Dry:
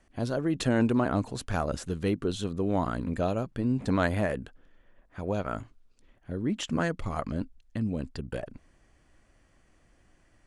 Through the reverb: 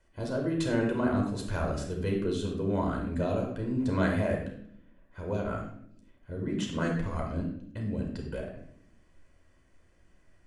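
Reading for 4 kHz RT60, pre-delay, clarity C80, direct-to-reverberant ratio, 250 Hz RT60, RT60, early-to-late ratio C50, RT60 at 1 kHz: 0.50 s, 11 ms, 8.5 dB, 0.0 dB, 1.2 s, 0.70 s, 4.5 dB, 0.55 s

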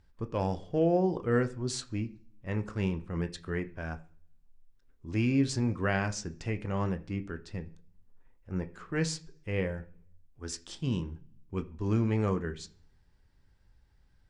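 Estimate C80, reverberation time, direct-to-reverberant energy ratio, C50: 21.5 dB, 0.45 s, 8.0 dB, 17.5 dB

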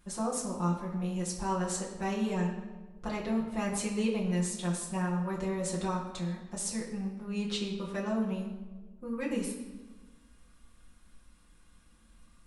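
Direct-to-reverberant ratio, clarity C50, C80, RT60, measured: -5.5 dB, 5.0 dB, 7.5 dB, 1.3 s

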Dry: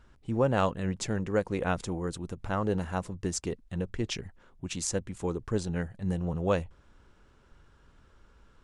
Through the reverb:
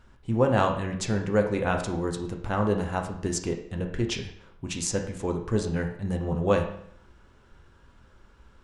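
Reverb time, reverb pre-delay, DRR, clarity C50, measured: 0.65 s, 6 ms, 3.0 dB, 8.0 dB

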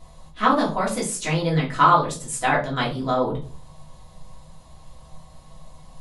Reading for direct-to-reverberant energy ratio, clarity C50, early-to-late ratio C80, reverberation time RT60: -5.5 dB, 9.5 dB, 15.0 dB, 0.40 s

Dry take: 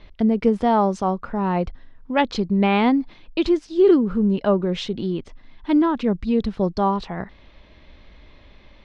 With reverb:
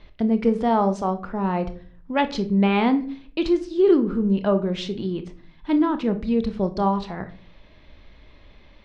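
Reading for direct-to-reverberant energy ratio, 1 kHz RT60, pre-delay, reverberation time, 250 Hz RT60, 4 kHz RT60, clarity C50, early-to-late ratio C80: 9.0 dB, 0.35 s, 26 ms, 0.45 s, 0.65 s, 0.30 s, 14.0 dB, 19.0 dB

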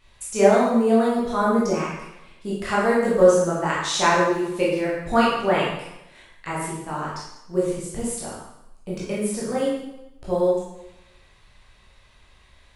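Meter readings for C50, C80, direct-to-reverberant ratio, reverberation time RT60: 0.5 dB, 3.5 dB, -7.5 dB, 0.85 s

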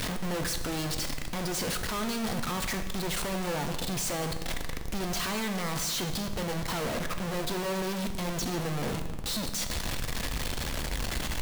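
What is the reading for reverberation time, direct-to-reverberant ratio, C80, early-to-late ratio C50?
1.4 s, 6.0 dB, 10.5 dB, 9.0 dB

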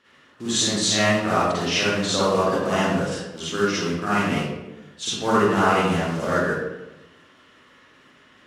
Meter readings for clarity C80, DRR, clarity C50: 0.0 dB, -10.5 dB, -5.0 dB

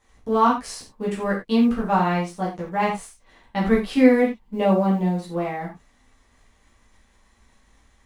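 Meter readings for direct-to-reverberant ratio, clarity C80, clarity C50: -6.5 dB, 11.5 dB, 6.5 dB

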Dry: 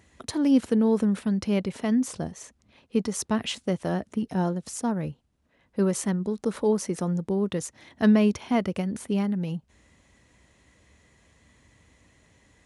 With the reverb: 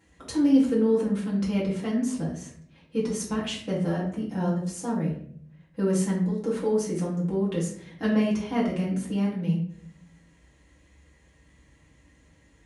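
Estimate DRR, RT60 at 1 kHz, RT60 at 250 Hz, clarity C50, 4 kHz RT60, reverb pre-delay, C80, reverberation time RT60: -7.0 dB, 0.50 s, 0.90 s, 5.0 dB, 0.40 s, 4 ms, 9.5 dB, 0.60 s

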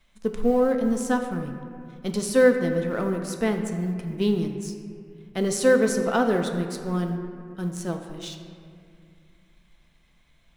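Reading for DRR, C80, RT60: 4.0 dB, 7.5 dB, 2.3 s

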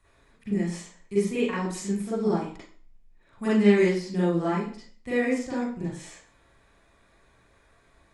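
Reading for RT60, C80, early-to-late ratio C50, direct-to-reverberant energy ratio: 0.45 s, 5.5 dB, 0.0 dB, -10.5 dB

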